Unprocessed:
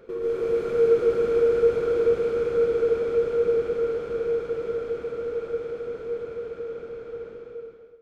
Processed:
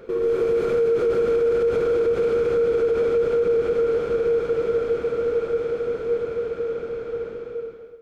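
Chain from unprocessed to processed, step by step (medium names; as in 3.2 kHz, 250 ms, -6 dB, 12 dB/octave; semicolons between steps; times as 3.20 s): peak limiter -21.5 dBFS, peak gain reduction 11 dB; trim +7 dB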